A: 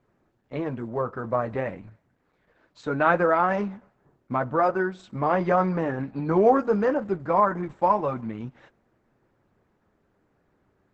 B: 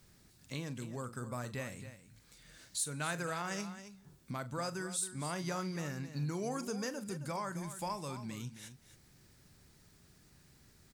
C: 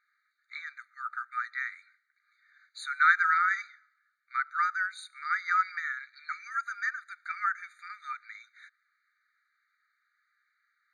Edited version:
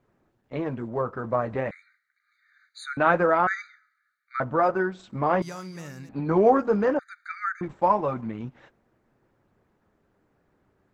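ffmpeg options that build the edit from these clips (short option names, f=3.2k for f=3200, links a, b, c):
-filter_complex "[2:a]asplit=3[a][b][c];[0:a]asplit=5[d][e][f][g][h];[d]atrim=end=1.712[i];[a]atrim=start=1.708:end=2.972[j];[e]atrim=start=2.968:end=3.472[k];[b]atrim=start=3.468:end=4.402[l];[f]atrim=start=4.398:end=5.422[m];[1:a]atrim=start=5.418:end=6.092[n];[g]atrim=start=6.088:end=6.992[o];[c]atrim=start=6.988:end=7.612[p];[h]atrim=start=7.608[q];[i][j]acrossfade=d=0.004:c1=hsin:c2=hsin[r];[r][k]acrossfade=d=0.004:c1=hsin:c2=hsin[s];[s][l]acrossfade=d=0.004:c1=hsin:c2=hsin[t];[t][m]acrossfade=d=0.004:c1=hsin:c2=hsin[u];[u][n]acrossfade=d=0.004:c1=hsin:c2=hsin[v];[v][o]acrossfade=d=0.004:c1=hsin:c2=hsin[w];[w][p]acrossfade=d=0.004:c1=hsin:c2=hsin[x];[x][q]acrossfade=d=0.004:c1=hsin:c2=hsin"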